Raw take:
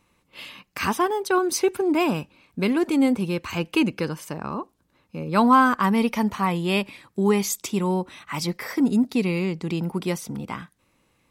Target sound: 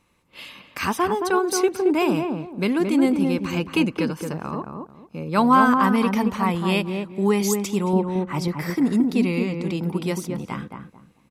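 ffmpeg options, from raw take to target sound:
-filter_complex "[0:a]asettb=1/sr,asplit=3[s0][s1][s2];[s0]atrim=end=7.934[s3];[s1]atrim=start=7.93:end=8.48,asetpts=PTS-STARTPTS,afade=t=in:d=0.004:c=qsin,afade=t=out:st=0.546:d=0.004:c=qsin,tiltshelf=f=1200:g=6[s4];[s2]atrim=start=8.476[s5];[s3][s4]acrossfade=d=0.004:c1=hsin:c2=qsin[s6];[s6][s5]acrossfade=d=0.004:c1=qsin:c2=hsin,asplit=2[s7][s8];[s8]adelay=222,lowpass=f=1000:p=1,volume=0.668,asplit=2[s9][s10];[s10]adelay=222,lowpass=f=1000:p=1,volume=0.28,asplit=2[s11][s12];[s12]adelay=222,lowpass=f=1000:p=1,volume=0.28,asplit=2[s13][s14];[s14]adelay=222,lowpass=f=1000:p=1,volume=0.28[s15];[s9][s11][s13][s15]amix=inputs=4:normalize=0[s16];[s7][s16]amix=inputs=2:normalize=0,aresample=32000,aresample=44100"

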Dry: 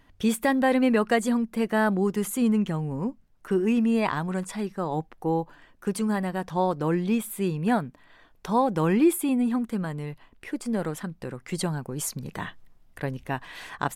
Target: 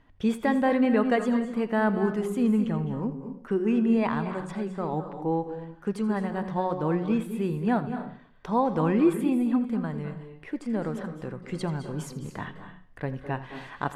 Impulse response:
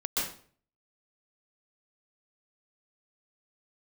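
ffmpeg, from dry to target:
-filter_complex "[0:a]aemphasis=mode=reproduction:type=75fm,bandreject=f=183.6:t=h:w=4,bandreject=f=367.2:t=h:w=4,bandreject=f=550.8:t=h:w=4,bandreject=f=734.4:t=h:w=4,bandreject=f=918:t=h:w=4,bandreject=f=1101.6:t=h:w=4,bandreject=f=1285.2:t=h:w=4,bandreject=f=1468.8:t=h:w=4,bandreject=f=1652.4:t=h:w=4,bandreject=f=1836:t=h:w=4,bandreject=f=2019.6:t=h:w=4,bandreject=f=2203.2:t=h:w=4,bandreject=f=2386.8:t=h:w=4,bandreject=f=2570.4:t=h:w=4,bandreject=f=2754:t=h:w=4,bandreject=f=2937.6:t=h:w=4,bandreject=f=3121.2:t=h:w=4,bandreject=f=3304.8:t=h:w=4,bandreject=f=3488.4:t=h:w=4,bandreject=f=3672:t=h:w=4,bandreject=f=3855.6:t=h:w=4,bandreject=f=4039.2:t=h:w=4,bandreject=f=4222.8:t=h:w=4,bandreject=f=4406.4:t=h:w=4,bandreject=f=4590:t=h:w=4,bandreject=f=4773.6:t=h:w=4,bandreject=f=4957.2:t=h:w=4,bandreject=f=5140.8:t=h:w=4,bandreject=f=5324.4:t=h:w=4,bandreject=f=5508:t=h:w=4,bandreject=f=5691.6:t=h:w=4,bandreject=f=5875.2:t=h:w=4,bandreject=f=6058.8:t=h:w=4,bandreject=f=6242.4:t=h:w=4,bandreject=f=6426:t=h:w=4,asplit=2[s0][s1];[1:a]atrim=start_sample=2205,adelay=83[s2];[s1][s2]afir=irnorm=-1:irlink=0,volume=0.168[s3];[s0][s3]amix=inputs=2:normalize=0,volume=0.794"

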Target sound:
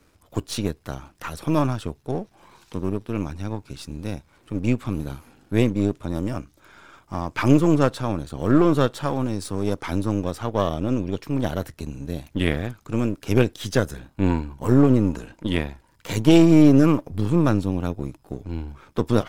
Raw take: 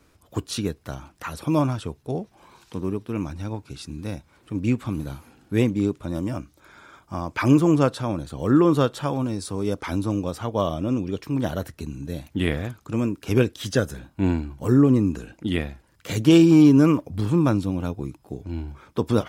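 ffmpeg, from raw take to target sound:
-filter_complex "[0:a]aeval=exprs='if(lt(val(0),0),0.447*val(0),val(0))':c=same,asettb=1/sr,asplit=3[s0][s1][s2];[s0]atrim=end=14.304[s3];[s1]atrim=start=14.3:end=16.47,asetpts=PTS-STARTPTS,afade=t=in:d=0.004:c=qsin,afade=t=out:st=2.166:d=0.004:c=qsin,equalizer=f=950:w=7.2:g=9.5[s4];[s2]atrim=start=16.466[s5];[s3][s4]acrossfade=d=0.004:c1=hsin:c2=qsin[s6];[s6][s5]acrossfade=d=0.004:c1=qsin:c2=hsin,volume=1.33"

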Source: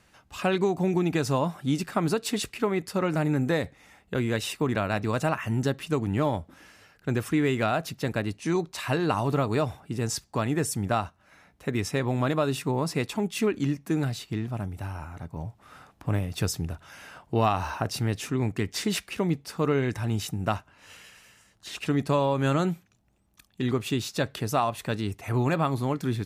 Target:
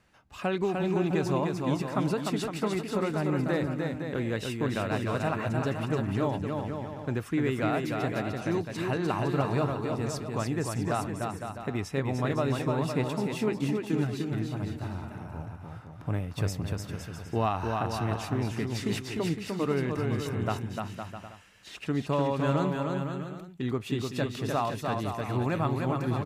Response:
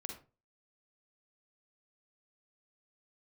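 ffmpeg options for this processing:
-filter_complex "[0:a]highshelf=f=4200:g=-7,asplit=2[s0][s1];[s1]aecho=0:1:300|510|657|759.9|831.9:0.631|0.398|0.251|0.158|0.1[s2];[s0][s2]amix=inputs=2:normalize=0,volume=0.631"

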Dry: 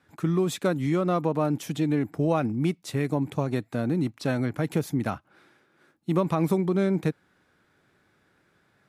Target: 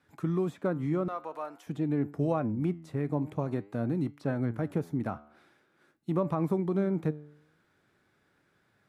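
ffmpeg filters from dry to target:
-filter_complex "[0:a]asettb=1/sr,asplit=3[s0][s1][s2];[s0]atrim=end=1.084[s3];[s1]atrim=start=1.08:end=1.67,asetpts=PTS-STARTPTS,afade=t=in:d=0.004:c=qsin,afade=t=out:st=0.586:d=0.004:c=qsin,highpass=860[s4];[s2]atrim=start=1.666[s5];[s3][s4]acrossfade=d=0.004:c1=hsin:c2=qsin[s6];[s6][s5]acrossfade=d=0.004:c1=qsin:c2=hsin,acrossover=split=1700[s7][s8];[s8]acompressor=threshold=0.002:ratio=10[s9];[s7][s9]amix=inputs=2:normalize=0,flanger=delay=6.9:depth=6.6:regen=88:speed=0.48:shape=sinusoidal"

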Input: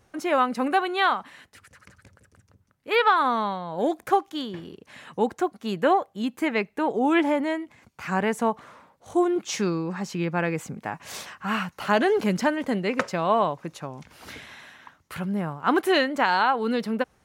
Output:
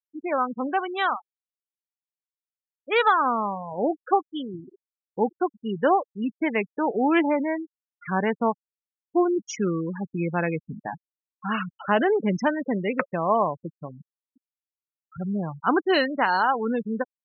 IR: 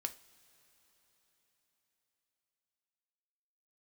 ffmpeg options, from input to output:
-af "dynaudnorm=f=990:g=3:m=1.5,afftfilt=real='re*gte(hypot(re,im),0.1)':imag='im*gte(hypot(re,im),0.1)':win_size=1024:overlap=0.75,volume=0.708"

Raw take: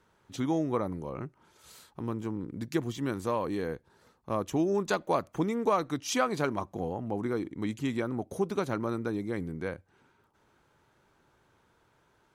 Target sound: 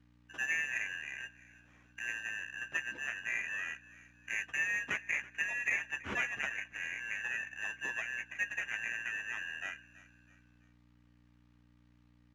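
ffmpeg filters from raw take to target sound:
-filter_complex "[0:a]afftfilt=real='real(if(lt(b,272),68*(eq(floor(b/68),0)*3+eq(floor(b/68),1)*0+eq(floor(b/68),2)*1+eq(floor(b/68),3)*2)+mod(b,68),b),0)':imag='imag(if(lt(b,272),68*(eq(floor(b/68),0)*3+eq(floor(b/68),1)*0+eq(floor(b/68),2)*1+eq(floor(b/68),3)*2)+mod(b,68),b),0)':win_size=2048:overlap=0.75,afftdn=nr=15:nf=-42,asubboost=boost=9.5:cutoff=180,asplit=2[s0][s1];[s1]acompressor=threshold=0.01:ratio=4,volume=0.841[s2];[s0][s2]amix=inputs=2:normalize=0,acrusher=samples=10:mix=1:aa=0.000001,aeval=exprs='val(0)+0.00282*(sin(2*PI*60*n/s)+sin(2*PI*2*60*n/s)/2+sin(2*PI*3*60*n/s)/3+sin(2*PI*4*60*n/s)/4+sin(2*PI*5*60*n/s)/5)':c=same,acrusher=bits=4:mode=log:mix=0:aa=0.000001,highpass=110,lowpass=4700,asplit=2[s3][s4];[s4]adelay=14,volume=0.355[s5];[s3][s5]amix=inputs=2:normalize=0,asplit=2[s6][s7];[s7]asplit=3[s8][s9][s10];[s8]adelay=328,afreqshift=-38,volume=0.1[s11];[s9]adelay=656,afreqshift=-76,volume=0.0422[s12];[s10]adelay=984,afreqshift=-114,volume=0.0176[s13];[s11][s12][s13]amix=inputs=3:normalize=0[s14];[s6][s14]amix=inputs=2:normalize=0,adynamicequalizer=threshold=0.00794:dfrequency=3700:dqfactor=0.7:tfrequency=3700:tqfactor=0.7:attack=5:release=100:ratio=0.375:range=3.5:mode=cutabove:tftype=highshelf,volume=0.422"

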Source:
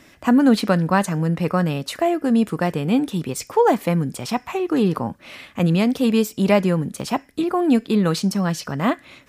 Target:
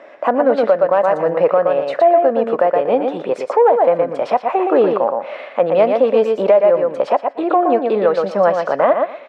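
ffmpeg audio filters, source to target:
-af "lowpass=1700,aecho=1:1:118|236|354:0.501|0.0752|0.0113,acontrast=35,highpass=f=570:t=q:w=4.5,alimiter=limit=0.447:level=0:latency=1:release=357,volume=1.41"

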